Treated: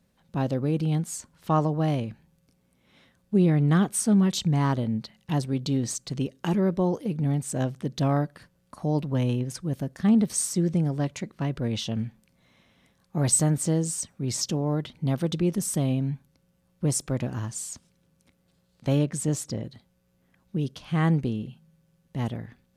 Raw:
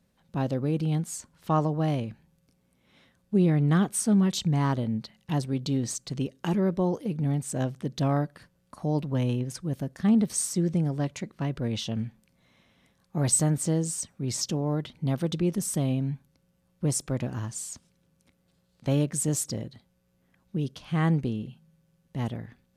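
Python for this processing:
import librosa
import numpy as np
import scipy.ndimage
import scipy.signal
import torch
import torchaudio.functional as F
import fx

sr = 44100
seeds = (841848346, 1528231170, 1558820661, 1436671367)

y = fx.high_shelf(x, sr, hz=fx.line((18.97, 10000.0), (19.63, 5400.0)), db=-11.0, at=(18.97, 19.63), fade=0.02)
y = F.gain(torch.from_numpy(y), 1.5).numpy()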